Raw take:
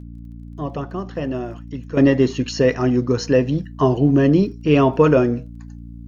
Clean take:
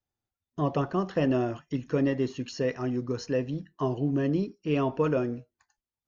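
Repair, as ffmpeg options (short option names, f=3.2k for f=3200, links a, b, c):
-af "adeclick=t=4,bandreject=f=57.9:t=h:w=4,bandreject=f=115.8:t=h:w=4,bandreject=f=173.7:t=h:w=4,bandreject=f=231.6:t=h:w=4,bandreject=f=289.5:t=h:w=4,asetnsamples=n=441:p=0,asendcmd='1.97 volume volume -12dB',volume=0dB"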